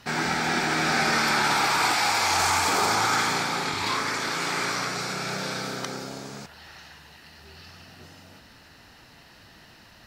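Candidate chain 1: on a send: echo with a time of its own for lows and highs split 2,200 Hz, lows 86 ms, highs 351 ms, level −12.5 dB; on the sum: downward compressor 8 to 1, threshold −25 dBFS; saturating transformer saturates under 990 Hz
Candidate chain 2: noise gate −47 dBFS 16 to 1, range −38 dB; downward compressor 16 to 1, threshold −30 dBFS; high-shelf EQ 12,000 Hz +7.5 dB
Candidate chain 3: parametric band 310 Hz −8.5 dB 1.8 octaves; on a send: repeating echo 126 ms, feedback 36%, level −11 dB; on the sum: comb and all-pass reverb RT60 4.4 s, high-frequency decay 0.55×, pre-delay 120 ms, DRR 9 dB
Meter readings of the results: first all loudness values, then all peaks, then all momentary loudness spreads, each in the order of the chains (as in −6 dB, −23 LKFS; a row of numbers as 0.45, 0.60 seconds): −29.0, −32.5, −24.0 LKFS; −16.0, −16.5, −10.5 dBFS; 19, 16, 15 LU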